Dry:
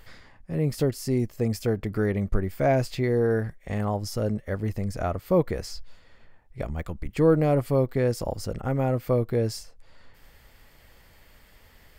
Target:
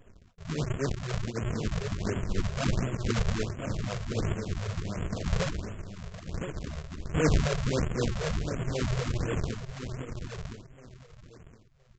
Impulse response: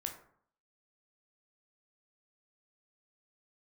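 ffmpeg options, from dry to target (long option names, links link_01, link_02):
-filter_complex "[0:a]afftfilt=real='re':imag='-im':win_size=8192:overlap=0.75,aresample=16000,acrusher=samples=36:mix=1:aa=0.000001:lfo=1:lforange=57.6:lforate=3.9,aresample=44100,agate=range=-32dB:threshold=-54dB:ratio=16:detection=peak,equalizer=frequency=860:width_type=o:width=0.26:gain=-8.5,asetrate=42845,aresample=44100,atempo=1.0293,asplit=2[link_01][link_02];[link_02]aecho=0:1:1015|2030|3045:0.422|0.0928|0.0204[link_03];[link_01][link_03]amix=inputs=2:normalize=0,afftfilt=real='re*(1-between(b*sr/1024,250*pow(4900/250,0.5+0.5*sin(2*PI*1.4*pts/sr))/1.41,250*pow(4900/250,0.5+0.5*sin(2*PI*1.4*pts/sr))*1.41))':imag='im*(1-between(b*sr/1024,250*pow(4900/250,0.5+0.5*sin(2*PI*1.4*pts/sr))/1.41,250*pow(4900/250,0.5+0.5*sin(2*PI*1.4*pts/sr))*1.41))':win_size=1024:overlap=0.75"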